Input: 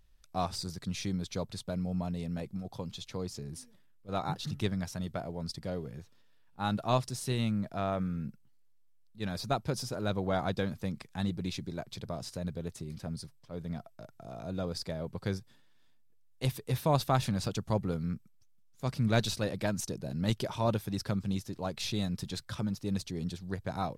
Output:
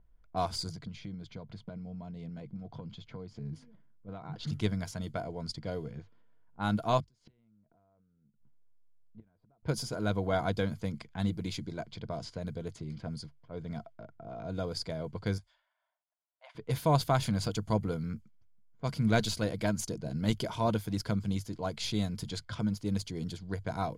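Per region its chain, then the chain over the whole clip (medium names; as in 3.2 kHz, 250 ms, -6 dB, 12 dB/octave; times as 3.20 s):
0.69–4.34 s: compression 5:1, threshold -43 dBFS + peaking EQ 160 Hz +7 dB 0.99 oct
7.00–9.63 s: compression 10:1, threshold -41 dBFS + distance through air 100 m + inverted gate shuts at -39 dBFS, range -24 dB
15.38–16.55 s: transient shaper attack -9 dB, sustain -3 dB + brick-wall FIR band-pass 540–11000 Hz
whole clip: level-controlled noise filter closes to 1.1 kHz, open at -31.5 dBFS; rippled EQ curve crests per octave 1.8, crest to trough 7 dB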